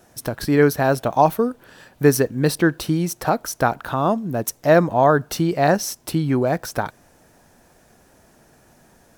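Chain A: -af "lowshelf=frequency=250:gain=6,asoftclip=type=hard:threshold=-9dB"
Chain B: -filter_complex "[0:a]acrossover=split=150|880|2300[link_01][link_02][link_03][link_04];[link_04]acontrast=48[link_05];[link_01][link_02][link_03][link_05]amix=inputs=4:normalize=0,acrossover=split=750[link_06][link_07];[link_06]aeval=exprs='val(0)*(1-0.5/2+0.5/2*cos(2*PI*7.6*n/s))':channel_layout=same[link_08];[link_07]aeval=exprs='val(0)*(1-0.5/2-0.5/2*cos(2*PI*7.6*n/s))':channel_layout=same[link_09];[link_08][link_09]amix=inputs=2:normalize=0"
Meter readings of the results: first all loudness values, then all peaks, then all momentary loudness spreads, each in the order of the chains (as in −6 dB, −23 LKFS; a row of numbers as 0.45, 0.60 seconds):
−19.0, −21.5 LKFS; −9.0, −3.5 dBFS; 7, 8 LU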